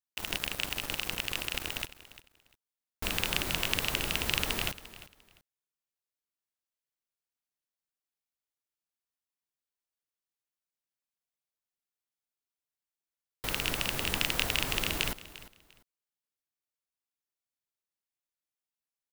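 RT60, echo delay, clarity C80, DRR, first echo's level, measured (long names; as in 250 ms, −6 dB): no reverb audible, 348 ms, no reverb audible, no reverb audible, −17.0 dB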